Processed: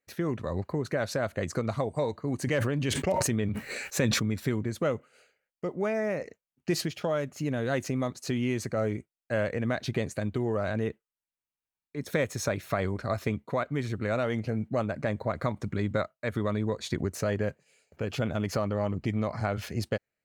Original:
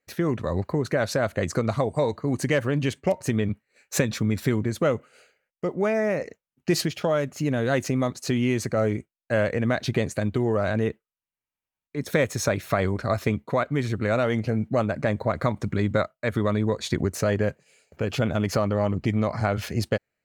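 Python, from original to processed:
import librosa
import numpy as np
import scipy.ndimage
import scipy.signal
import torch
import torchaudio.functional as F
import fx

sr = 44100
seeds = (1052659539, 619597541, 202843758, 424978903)

y = fx.sustainer(x, sr, db_per_s=24.0, at=(2.42, 4.23))
y = y * librosa.db_to_amplitude(-5.5)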